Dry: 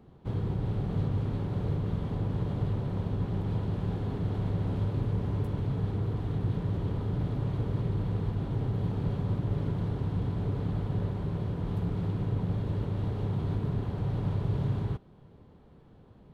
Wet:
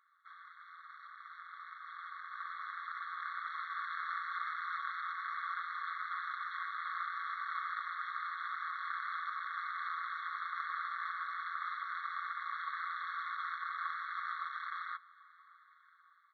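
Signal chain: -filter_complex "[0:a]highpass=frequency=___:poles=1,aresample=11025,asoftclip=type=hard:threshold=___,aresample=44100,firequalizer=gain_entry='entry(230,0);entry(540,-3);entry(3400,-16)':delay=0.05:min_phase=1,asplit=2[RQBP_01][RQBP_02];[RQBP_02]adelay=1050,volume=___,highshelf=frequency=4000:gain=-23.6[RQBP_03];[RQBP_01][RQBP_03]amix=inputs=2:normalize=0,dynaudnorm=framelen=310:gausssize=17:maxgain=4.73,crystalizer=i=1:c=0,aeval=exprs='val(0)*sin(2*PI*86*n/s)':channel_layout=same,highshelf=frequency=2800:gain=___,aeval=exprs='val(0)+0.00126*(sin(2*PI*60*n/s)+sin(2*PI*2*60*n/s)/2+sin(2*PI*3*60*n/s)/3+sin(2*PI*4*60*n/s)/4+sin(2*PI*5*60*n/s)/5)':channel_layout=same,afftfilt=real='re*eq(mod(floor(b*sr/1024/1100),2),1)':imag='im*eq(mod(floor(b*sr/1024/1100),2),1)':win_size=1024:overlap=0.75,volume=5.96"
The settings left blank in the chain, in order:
290, 0.015, 0.112, -9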